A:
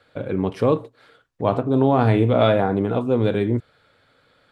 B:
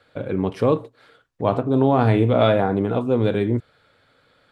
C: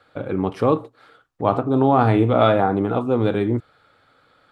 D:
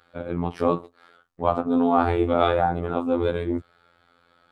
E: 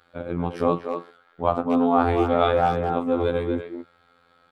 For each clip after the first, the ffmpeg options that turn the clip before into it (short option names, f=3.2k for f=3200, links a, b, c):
-af anull
-af "equalizer=f=315:t=o:w=0.33:g=4,equalizer=f=800:t=o:w=0.33:g=6,equalizer=f=1.25k:t=o:w=0.33:g=8,volume=-1dB"
-af "afftfilt=real='hypot(re,im)*cos(PI*b)':imag='0':win_size=2048:overlap=0.75"
-filter_complex "[0:a]asplit=2[a][b];[b]adelay=240,highpass=300,lowpass=3.4k,asoftclip=type=hard:threshold=-12dB,volume=-6dB[c];[a][c]amix=inputs=2:normalize=0"